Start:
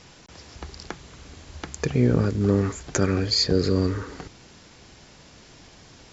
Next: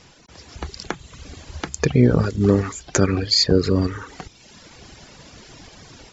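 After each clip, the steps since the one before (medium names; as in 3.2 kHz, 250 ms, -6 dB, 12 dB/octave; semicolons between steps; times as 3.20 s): reverb removal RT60 1 s; level rider gain up to 8 dB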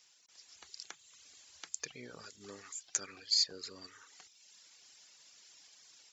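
differentiator; trim -8 dB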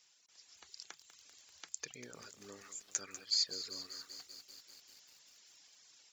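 bit-crushed delay 195 ms, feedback 80%, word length 9-bit, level -11.5 dB; trim -3 dB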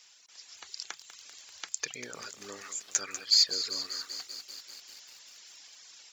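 overdrive pedal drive 7 dB, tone 7.4 kHz, clips at -16.5 dBFS; trim +8 dB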